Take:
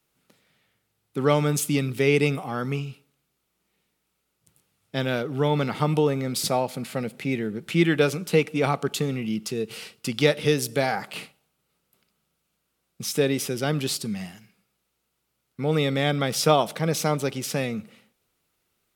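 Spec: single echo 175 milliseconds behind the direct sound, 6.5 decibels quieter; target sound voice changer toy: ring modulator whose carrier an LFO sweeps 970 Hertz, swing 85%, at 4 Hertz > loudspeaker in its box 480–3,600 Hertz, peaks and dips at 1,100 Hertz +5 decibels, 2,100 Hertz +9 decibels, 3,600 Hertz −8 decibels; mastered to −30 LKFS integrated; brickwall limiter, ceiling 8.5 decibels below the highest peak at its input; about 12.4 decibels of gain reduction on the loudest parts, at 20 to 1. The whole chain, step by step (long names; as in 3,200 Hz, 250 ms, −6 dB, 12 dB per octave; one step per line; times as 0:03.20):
downward compressor 20 to 1, threshold −26 dBFS
brickwall limiter −21.5 dBFS
single-tap delay 175 ms −6.5 dB
ring modulator whose carrier an LFO sweeps 970 Hz, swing 85%, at 4 Hz
loudspeaker in its box 480–3,600 Hz, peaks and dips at 1,100 Hz +5 dB, 2,100 Hz +9 dB, 3,600 Hz −8 dB
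level +2 dB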